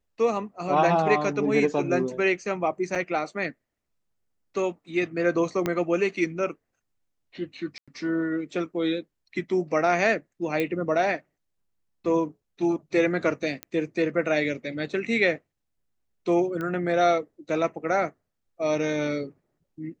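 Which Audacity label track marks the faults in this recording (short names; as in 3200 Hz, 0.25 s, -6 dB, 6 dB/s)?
2.950000	2.960000	gap 5.7 ms
5.660000	5.660000	pop -12 dBFS
7.780000	7.880000	gap 96 ms
10.600000	10.600000	pop -14 dBFS
13.630000	13.630000	pop -16 dBFS
16.610000	16.610000	pop -20 dBFS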